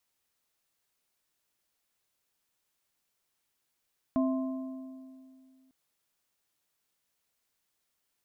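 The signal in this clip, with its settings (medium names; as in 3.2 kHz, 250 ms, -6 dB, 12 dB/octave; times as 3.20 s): metal hit plate, length 1.55 s, lowest mode 262 Hz, modes 3, decay 2.38 s, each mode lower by 7 dB, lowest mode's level -23.5 dB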